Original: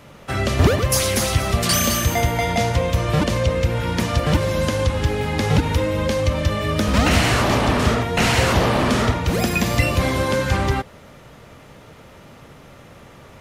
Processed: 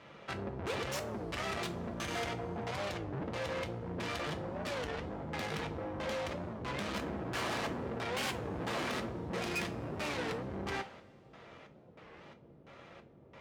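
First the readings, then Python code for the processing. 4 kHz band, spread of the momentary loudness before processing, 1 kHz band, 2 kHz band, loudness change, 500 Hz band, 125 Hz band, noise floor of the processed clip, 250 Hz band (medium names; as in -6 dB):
-17.5 dB, 5 LU, -16.5 dB, -16.0 dB, -18.5 dB, -17.0 dB, -23.0 dB, -58 dBFS, -18.0 dB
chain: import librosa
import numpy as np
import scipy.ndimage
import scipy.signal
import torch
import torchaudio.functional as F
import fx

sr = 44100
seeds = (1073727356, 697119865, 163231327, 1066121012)

y = fx.filter_lfo_lowpass(x, sr, shape='square', hz=1.5, low_hz=380.0, high_hz=3800.0, q=0.78)
y = fx.tube_stage(y, sr, drive_db=29.0, bias=0.7)
y = fx.highpass(y, sr, hz=270.0, slope=6)
y = fx.rev_double_slope(y, sr, seeds[0], early_s=0.28, late_s=2.5, knee_db=-22, drr_db=4.5)
y = fx.record_warp(y, sr, rpm=33.33, depth_cents=250.0)
y = F.gain(torch.from_numpy(y), -4.5).numpy()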